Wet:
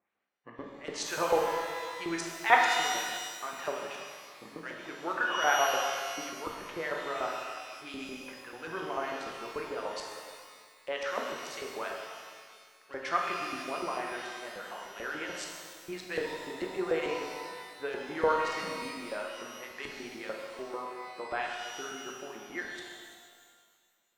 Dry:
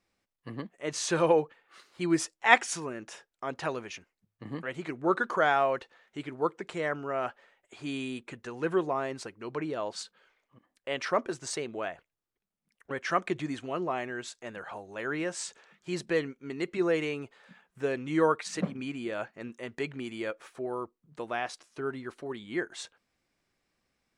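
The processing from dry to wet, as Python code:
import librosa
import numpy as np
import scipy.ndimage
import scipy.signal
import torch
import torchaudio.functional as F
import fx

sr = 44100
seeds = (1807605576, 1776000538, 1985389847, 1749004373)

y = fx.wiener(x, sr, points=9)
y = fx.filter_lfo_bandpass(y, sr, shape='saw_up', hz=6.8, low_hz=560.0, high_hz=5900.0, q=0.79)
y = fx.rev_shimmer(y, sr, seeds[0], rt60_s=1.8, semitones=12, shimmer_db=-8, drr_db=-0.5)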